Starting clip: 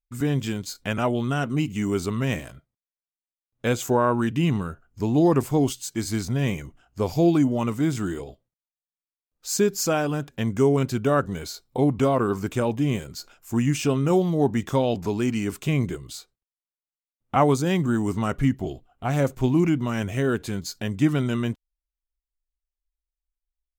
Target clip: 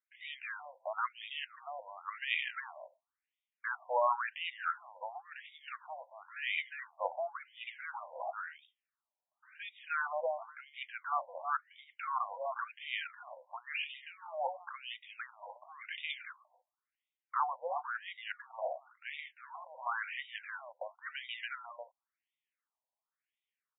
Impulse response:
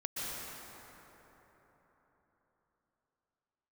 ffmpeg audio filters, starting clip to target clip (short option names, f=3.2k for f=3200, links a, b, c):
-af "aecho=1:1:358:0.211,areverse,acompressor=threshold=-34dB:ratio=12,areverse,afftfilt=real='re*between(b*sr/1024,710*pow(2700/710,0.5+0.5*sin(2*PI*0.95*pts/sr))/1.41,710*pow(2700/710,0.5+0.5*sin(2*PI*0.95*pts/sr))*1.41)':imag='im*between(b*sr/1024,710*pow(2700/710,0.5+0.5*sin(2*PI*0.95*pts/sr))/1.41,710*pow(2700/710,0.5+0.5*sin(2*PI*0.95*pts/sr))*1.41)':win_size=1024:overlap=0.75,volume=12.5dB"